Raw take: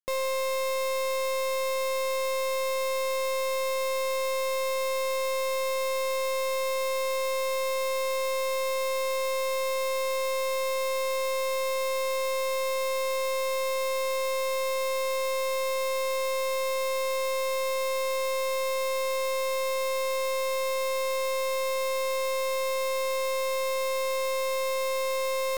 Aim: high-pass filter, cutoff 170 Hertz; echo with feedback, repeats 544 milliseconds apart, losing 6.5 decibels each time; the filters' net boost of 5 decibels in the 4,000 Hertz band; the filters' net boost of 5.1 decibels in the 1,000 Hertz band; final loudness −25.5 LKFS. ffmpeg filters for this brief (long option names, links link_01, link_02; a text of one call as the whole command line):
ffmpeg -i in.wav -af "highpass=170,equalizer=frequency=1000:width_type=o:gain=5,equalizer=frequency=4000:width_type=o:gain=5.5,aecho=1:1:544|1088|1632|2176|2720|3264:0.473|0.222|0.105|0.0491|0.0231|0.0109,volume=0.5dB" out.wav